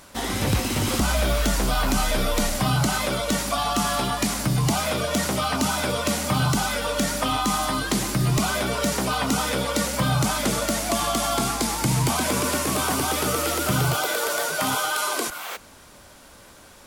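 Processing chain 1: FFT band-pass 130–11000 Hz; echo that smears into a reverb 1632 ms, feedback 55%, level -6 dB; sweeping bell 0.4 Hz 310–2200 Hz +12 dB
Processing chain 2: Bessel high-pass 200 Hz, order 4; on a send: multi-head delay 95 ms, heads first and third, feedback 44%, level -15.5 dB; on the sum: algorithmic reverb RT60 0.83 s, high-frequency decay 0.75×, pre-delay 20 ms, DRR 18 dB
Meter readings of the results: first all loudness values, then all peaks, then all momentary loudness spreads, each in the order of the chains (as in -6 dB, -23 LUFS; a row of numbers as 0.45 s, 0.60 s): -20.0 LUFS, -24.0 LUFS; -5.5 dBFS, -10.0 dBFS; 4 LU, 2 LU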